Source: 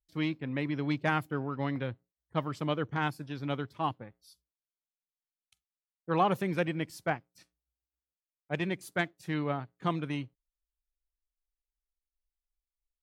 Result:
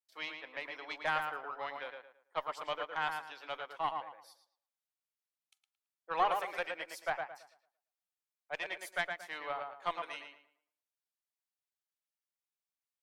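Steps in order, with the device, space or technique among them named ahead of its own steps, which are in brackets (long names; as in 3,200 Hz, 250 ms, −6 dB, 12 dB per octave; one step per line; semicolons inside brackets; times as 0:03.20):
high-pass filter 600 Hz 24 dB per octave
rockabilly slapback (tube saturation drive 17 dB, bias 0.5; tape delay 112 ms, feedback 33%, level −4 dB, low-pass 2,600 Hz)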